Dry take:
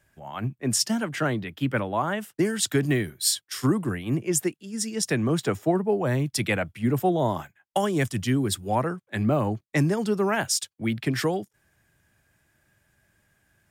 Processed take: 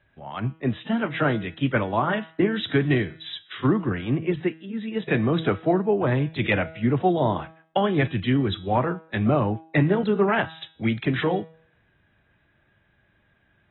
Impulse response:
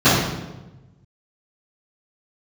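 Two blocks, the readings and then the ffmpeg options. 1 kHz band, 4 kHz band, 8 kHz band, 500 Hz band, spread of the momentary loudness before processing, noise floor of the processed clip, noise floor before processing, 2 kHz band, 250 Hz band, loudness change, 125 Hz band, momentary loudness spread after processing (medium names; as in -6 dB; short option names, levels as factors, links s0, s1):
+2.5 dB, -3.0 dB, under -40 dB, +2.5 dB, 6 LU, -65 dBFS, -75 dBFS, +3.0 dB, +2.0 dB, +1.5 dB, +2.0 dB, 8 LU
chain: -af "bandreject=f=161.1:t=h:w=4,bandreject=f=322.2:t=h:w=4,bandreject=f=483.3:t=h:w=4,bandreject=f=644.4:t=h:w=4,bandreject=f=805.5:t=h:w=4,bandreject=f=966.6:t=h:w=4,bandreject=f=1127.7:t=h:w=4,bandreject=f=1288.8:t=h:w=4,bandreject=f=1449.9:t=h:w=4,bandreject=f=1611:t=h:w=4,bandreject=f=1772.1:t=h:w=4,bandreject=f=1933.2:t=h:w=4,bandreject=f=2094.3:t=h:w=4,bandreject=f=2255.4:t=h:w=4,bandreject=f=2416.5:t=h:w=4,bandreject=f=2577.6:t=h:w=4,bandreject=f=2738.7:t=h:w=4,bandreject=f=2899.8:t=h:w=4,bandreject=f=3060.9:t=h:w=4,bandreject=f=3222:t=h:w=4,bandreject=f=3383.1:t=h:w=4,bandreject=f=3544.2:t=h:w=4,bandreject=f=3705.3:t=h:w=4,bandreject=f=3866.4:t=h:w=4,bandreject=f=4027.5:t=h:w=4,bandreject=f=4188.6:t=h:w=4,bandreject=f=4349.7:t=h:w=4,bandreject=f=4510.8:t=h:w=4,bandreject=f=4671.9:t=h:w=4,bandreject=f=4833:t=h:w=4,bandreject=f=4994.1:t=h:w=4,bandreject=f=5155.2:t=h:w=4,bandreject=f=5316.3:t=h:w=4,bandreject=f=5477.4:t=h:w=4,volume=1.26" -ar 24000 -c:a aac -b:a 16k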